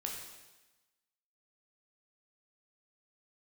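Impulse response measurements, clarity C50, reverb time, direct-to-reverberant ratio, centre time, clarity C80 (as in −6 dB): 3.0 dB, 1.1 s, −0.5 dB, 50 ms, 5.0 dB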